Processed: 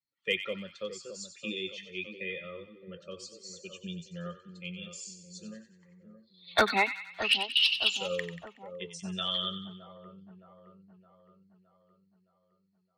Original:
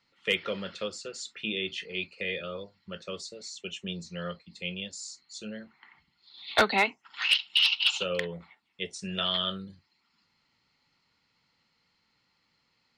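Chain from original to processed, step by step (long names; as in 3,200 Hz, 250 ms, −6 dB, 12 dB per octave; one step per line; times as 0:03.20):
spectral dynamics exaggerated over time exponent 1.5
echo with a time of its own for lows and highs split 1,200 Hz, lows 616 ms, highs 93 ms, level −10 dB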